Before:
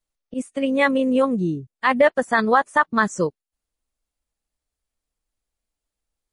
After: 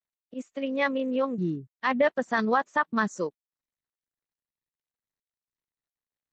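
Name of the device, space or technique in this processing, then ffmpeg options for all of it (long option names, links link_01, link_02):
Bluetooth headset: -filter_complex "[0:a]asettb=1/sr,asplit=3[link_01][link_02][link_03];[link_01]atrim=end=1.384[link_04];[link_02]atrim=start=1.38:end=3.09,asetpts=PTS-STARTPTS,afade=type=in:duration=0.004:curve=qsin,afade=type=out:start_time=1.706:duration=0.004:curve=qsin,bass=frequency=250:gain=10,treble=frequency=4000:gain=1[link_05];[link_03]atrim=start=3.086[link_06];[link_04][link_05]acrossfade=duration=0.004:curve1=hsin:curve2=qsin[link_07];[link_07][link_06]acrossfade=duration=0.004:curve1=qsin:curve2=hsin,highpass=220,aresample=16000,aresample=44100,volume=-7.5dB" -ar 32000 -c:a sbc -b:a 64k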